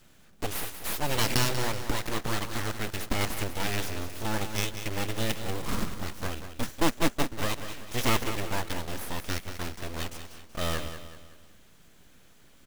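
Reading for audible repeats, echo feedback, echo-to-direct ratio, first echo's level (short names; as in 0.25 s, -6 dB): 4, 42%, -9.0 dB, -10.0 dB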